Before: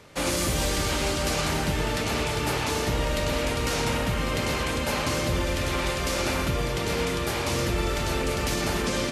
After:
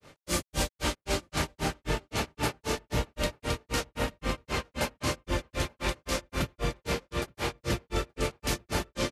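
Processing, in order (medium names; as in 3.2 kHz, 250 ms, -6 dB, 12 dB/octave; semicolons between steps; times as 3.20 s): granulator 166 ms, grains 3.8 per s, pitch spread up and down by 0 st; echo from a far wall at 150 m, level -28 dB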